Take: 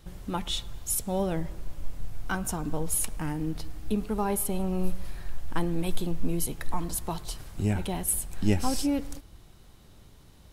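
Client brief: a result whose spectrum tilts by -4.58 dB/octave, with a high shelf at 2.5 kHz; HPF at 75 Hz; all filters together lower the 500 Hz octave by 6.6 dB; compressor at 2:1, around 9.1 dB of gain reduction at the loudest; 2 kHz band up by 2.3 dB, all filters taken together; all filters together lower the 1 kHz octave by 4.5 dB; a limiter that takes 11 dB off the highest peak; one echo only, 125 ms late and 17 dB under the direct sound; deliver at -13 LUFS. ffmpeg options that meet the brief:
-af "highpass=75,equalizer=f=500:t=o:g=-8.5,equalizer=f=1000:t=o:g=-3.5,equalizer=f=2000:t=o:g=7.5,highshelf=f=2500:g=-5,acompressor=threshold=0.0126:ratio=2,alimiter=level_in=2.82:limit=0.0631:level=0:latency=1,volume=0.355,aecho=1:1:125:0.141,volume=29.9"

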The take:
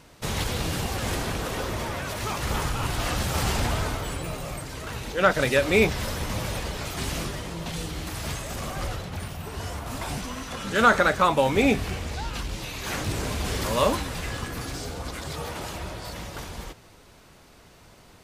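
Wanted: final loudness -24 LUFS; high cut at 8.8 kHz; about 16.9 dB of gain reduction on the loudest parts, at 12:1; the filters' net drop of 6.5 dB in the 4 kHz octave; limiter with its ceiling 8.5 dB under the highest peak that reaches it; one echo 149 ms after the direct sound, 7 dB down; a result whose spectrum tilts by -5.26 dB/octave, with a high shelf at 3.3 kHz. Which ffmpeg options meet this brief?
-af "lowpass=8800,highshelf=f=3300:g=-4,equalizer=f=4000:t=o:g=-5.5,acompressor=threshold=0.0251:ratio=12,alimiter=level_in=2.11:limit=0.0631:level=0:latency=1,volume=0.473,aecho=1:1:149:0.447,volume=5.62"

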